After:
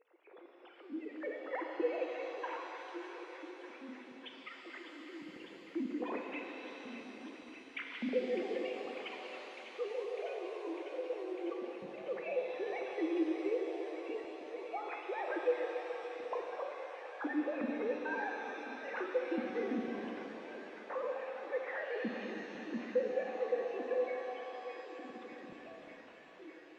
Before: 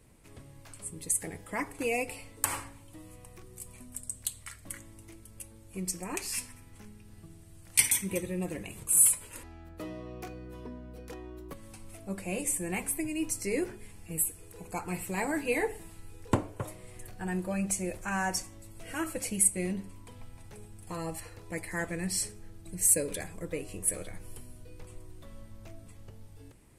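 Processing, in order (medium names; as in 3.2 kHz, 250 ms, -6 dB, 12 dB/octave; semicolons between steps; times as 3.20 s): formants replaced by sine waves; spectral gate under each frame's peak -20 dB strong; compression, threshold -37 dBFS, peak gain reduction 21 dB; low-pass that closes with the level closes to 1.8 kHz, closed at -38 dBFS; small resonant body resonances 300/510/3000 Hz, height 7 dB; on a send: feedback echo behind a high-pass 601 ms, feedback 83%, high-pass 1.5 kHz, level -9 dB; on the sum: pitch-shifted reverb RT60 3.6 s, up +7 st, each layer -8 dB, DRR 1.5 dB; trim -1 dB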